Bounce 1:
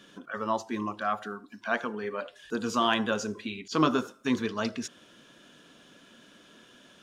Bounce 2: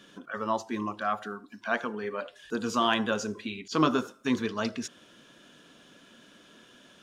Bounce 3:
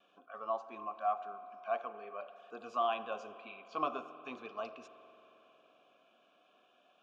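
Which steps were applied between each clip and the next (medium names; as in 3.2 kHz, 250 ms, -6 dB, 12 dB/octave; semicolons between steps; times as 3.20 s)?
no audible change
vowel filter a; spring tank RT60 3.8 s, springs 45 ms, chirp 30 ms, DRR 12.5 dB; vibrato 0.47 Hz 14 cents; trim +1 dB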